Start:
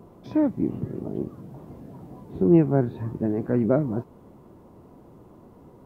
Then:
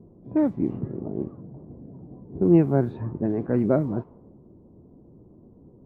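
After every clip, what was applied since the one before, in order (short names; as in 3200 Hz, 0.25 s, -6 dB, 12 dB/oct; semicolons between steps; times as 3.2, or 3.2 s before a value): low-pass opened by the level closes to 350 Hz, open at -17 dBFS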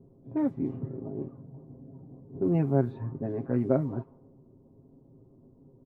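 comb 7.5 ms, depth 68%; gain -7 dB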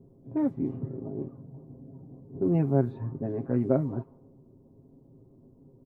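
bell 2400 Hz -3 dB 2.8 oct; gain +1 dB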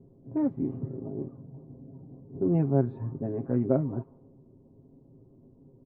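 LPF 1500 Hz 6 dB/oct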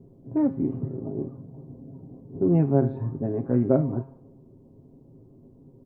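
de-hum 134.6 Hz, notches 34; gain +4.5 dB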